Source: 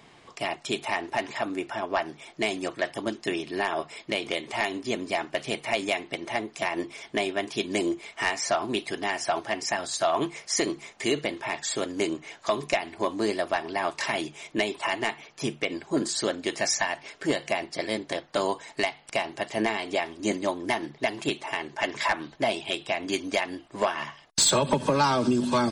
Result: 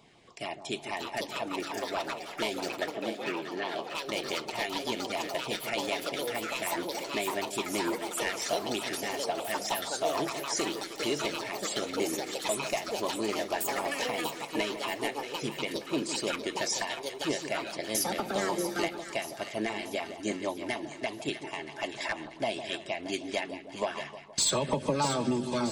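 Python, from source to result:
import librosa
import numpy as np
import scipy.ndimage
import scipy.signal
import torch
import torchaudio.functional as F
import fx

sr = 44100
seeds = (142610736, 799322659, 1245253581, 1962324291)

p1 = fx.echo_pitch(x, sr, ms=708, semitones=6, count=2, db_per_echo=-3.0)
p2 = fx.filter_lfo_notch(p1, sr, shape='saw_down', hz=6.6, low_hz=810.0, high_hz=1900.0, q=1.9)
p3 = fx.cheby1_bandpass(p2, sr, low_hz=170.0, high_hz=2600.0, order=2, at=(2.91, 3.95))
p4 = p3 + fx.echo_split(p3, sr, split_hz=1200.0, low_ms=156, high_ms=636, feedback_pct=52, wet_db=-10, dry=0)
y = p4 * 10.0 ** (-5.5 / 20.0)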